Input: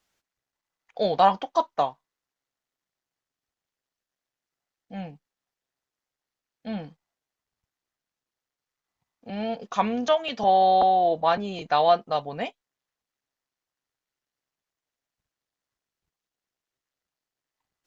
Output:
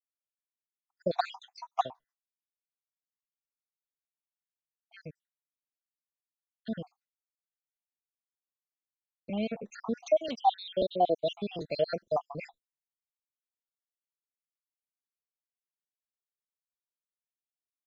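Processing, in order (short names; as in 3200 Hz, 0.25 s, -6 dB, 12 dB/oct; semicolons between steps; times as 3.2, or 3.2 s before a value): random spectral dropouts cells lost 70%; expander -58 dBFS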